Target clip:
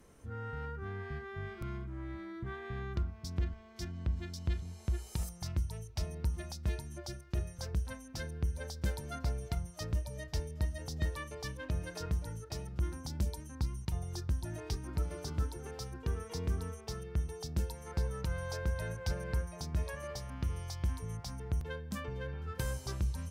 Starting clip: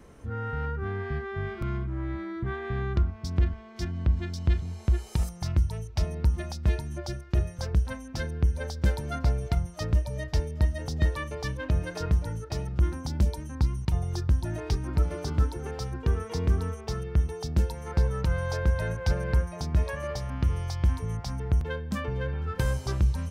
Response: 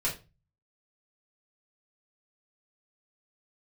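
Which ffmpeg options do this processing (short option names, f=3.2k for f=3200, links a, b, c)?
-filter_complex "[0:a]aemphasis=mode=production:type=cd,asplit=2[a][b];[1:a]atrim=start_sample=2205[c];[b][c]afir=irnorm=-1:irlink=0,volume=-27dB[d];[a][d]amix=inputs=2:normalize=0,volume=-9dB"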